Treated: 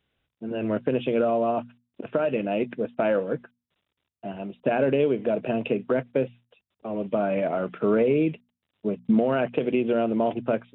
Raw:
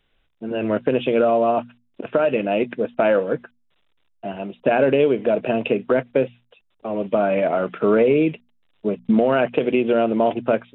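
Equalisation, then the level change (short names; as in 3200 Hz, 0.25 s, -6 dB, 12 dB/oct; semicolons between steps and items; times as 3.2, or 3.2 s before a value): HPF 80 Hz; low shelf 230 Hz +7.5 dB; -7.0 dB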